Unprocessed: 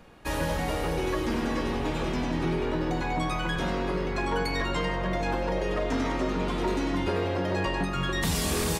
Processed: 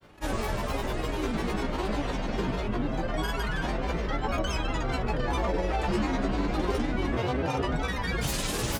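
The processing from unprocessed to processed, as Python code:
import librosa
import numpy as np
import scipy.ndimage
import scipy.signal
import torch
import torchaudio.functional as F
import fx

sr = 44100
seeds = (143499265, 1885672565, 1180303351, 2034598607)

y = fx.room_flutter(x, sr, wall_m=3.9, rt60_s=0.26)
y = fx.granulator(y, sr, seeds[0], grain_ms=100.0, per_s=20.0, spray_ms=100.0, spread_st=7)
y = F.gain(torch.from_numpy(y), -1.5).numpy()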